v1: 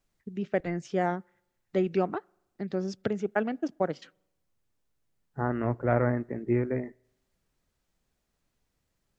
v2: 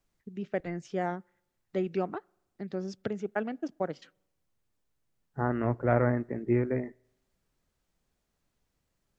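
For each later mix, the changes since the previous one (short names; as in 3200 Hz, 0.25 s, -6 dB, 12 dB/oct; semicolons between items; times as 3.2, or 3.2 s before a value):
first voice -4.0 dB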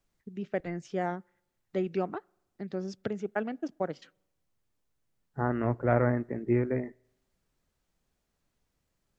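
none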